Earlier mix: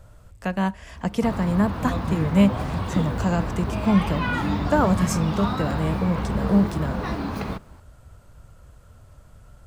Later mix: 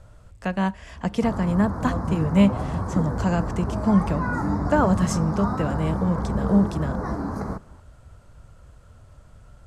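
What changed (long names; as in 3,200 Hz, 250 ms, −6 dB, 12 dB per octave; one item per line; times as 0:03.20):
background: add Butterworth band-reject 3,000 Hz, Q 0.71
master: add Bessel low-pass filter 9,200 Hz, order 8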